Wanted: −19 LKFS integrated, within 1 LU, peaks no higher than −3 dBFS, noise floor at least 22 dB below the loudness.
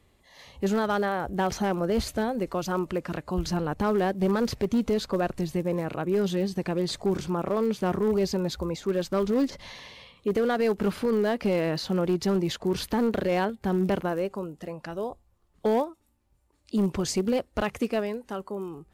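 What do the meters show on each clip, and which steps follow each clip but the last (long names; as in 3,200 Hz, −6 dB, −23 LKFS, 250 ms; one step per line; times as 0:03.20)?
share of clipped samples 1.4%; peaks flattened at −18.5 dBFS; integrated loudness −27.5 LKFS; sample peak −18.5 dBFS; target loudness −19.0 LKFS
→ clipped peaks rebuilt −18.5 dBFS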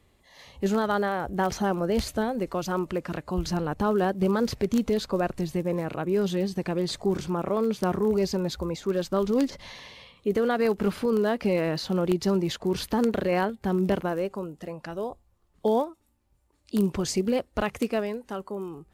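share of clipped samples 0.0%; integrated loudness −27.5 LKFS; sample peak −9.5 dBFS; target loudness −19.0 LKFS
→ level +8.5 dB
brickwall limiter −3 dBFS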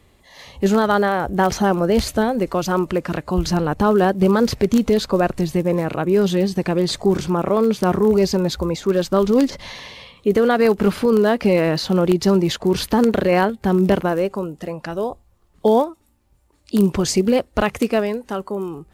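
integrated loudness −19.0 LKFS; sample peak −3.0 dBFS; background noise floor −57 dBFS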